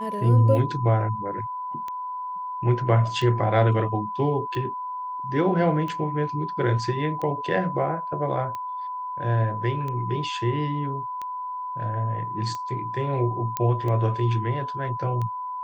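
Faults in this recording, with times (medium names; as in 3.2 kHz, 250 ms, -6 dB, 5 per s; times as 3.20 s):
tick 45 rpm -20 dBFS
whine 1 kHz -29 dBFS
13.57 s: pop -11 dBFS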